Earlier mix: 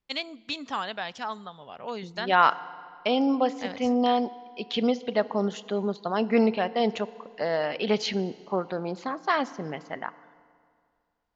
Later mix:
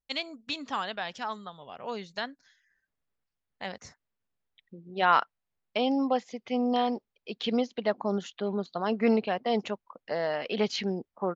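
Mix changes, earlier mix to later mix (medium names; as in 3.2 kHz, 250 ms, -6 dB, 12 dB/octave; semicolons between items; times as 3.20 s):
second voice: entry +2.70 s; reverb: off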